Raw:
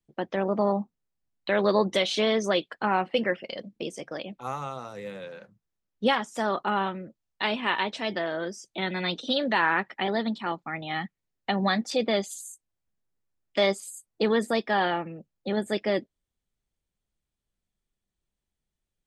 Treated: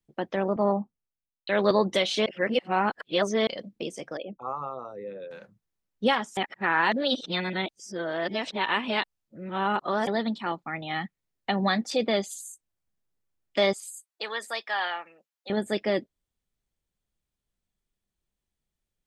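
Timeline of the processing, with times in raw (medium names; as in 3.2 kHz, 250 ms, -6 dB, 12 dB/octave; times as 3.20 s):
0.56–1.71 s: three bands expanded up and down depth 70%
2.26–3.47 s: reverse
4.17–5.31 s: resonances exaggerated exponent 2
6.37–10.07 s: reverse
13.73–15.50 s: high-pass 1 kHz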